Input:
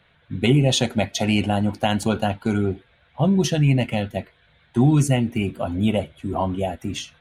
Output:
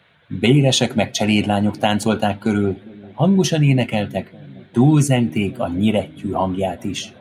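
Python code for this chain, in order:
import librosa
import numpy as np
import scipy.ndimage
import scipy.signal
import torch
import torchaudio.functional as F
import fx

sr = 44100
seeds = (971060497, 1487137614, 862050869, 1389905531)

y = scipy.signal.sosfilt(scipy.signal.butter(2, 110.0, 'highpass', fs=sr, output='sos'), x)
y = fx.echo_wet_lowpass(y, sr, ms=402, feedback_pct=65, hz=510.0, wet_db=-22.0)
y = y * librosa.db_to_amplitude(4.0)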